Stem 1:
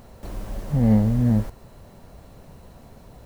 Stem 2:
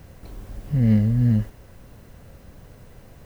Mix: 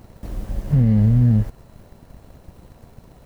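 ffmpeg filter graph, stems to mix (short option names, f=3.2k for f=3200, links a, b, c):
-filter_complex "[0:a]volume=-2.5dB[a];[1:a]lowshelf=f=270:g=12,aeval=exprs='sgn(val(0))*max(abs(val(0))-0.0251,0)':c=same,volume=-1dB[b];[a][b]amix=inputs=2:normalize=0,alimiter=limit=-8.5dB:level=0:latency=1:release=108"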